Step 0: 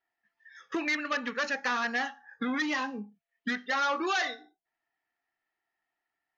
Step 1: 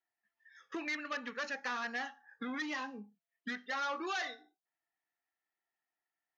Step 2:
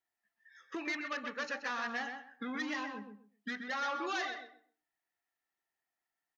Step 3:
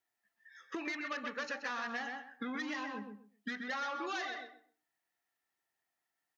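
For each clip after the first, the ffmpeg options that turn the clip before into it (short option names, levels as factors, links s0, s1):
-af "lowshelf=f=110:g=-7,aeval=exprs='0.0841*(cos(1*acos(clip(val(0)/0.0841,-1,1)))-cos(1*PI/2))+0.000596*(cos(5*acos(clip(val(0)/0.0841,-1,1)))-cos(5*PI/2))':c=same,volume=0.398"
-filter_complex "[0:a]asplit=2[s0][s1];[s1]adelay=129,lowpass=f=2200:p=1,volume=0.562,asplit=2[s2][s3];[s3]adelay=129,lowpass=f=2200:p=1,volume=0.21,asplit=2[s4][s5];[s5]adelay=129,lowpass=f=2200:p=1,volume=0.21[s6];[s0][s2][s4][s6]amix=inputs=4:normalize=0"
-af "highpass=51,acompressor=threshold=0.0126:ratio=6,volume=1.33"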